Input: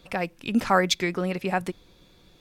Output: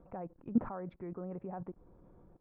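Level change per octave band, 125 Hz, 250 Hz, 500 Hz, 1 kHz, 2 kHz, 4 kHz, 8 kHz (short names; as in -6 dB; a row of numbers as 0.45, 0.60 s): -12.5 dB, -9.5 dB, -16.0 dB, -19.5 dB, -31.5 dB, under -40 dB, under -40 dB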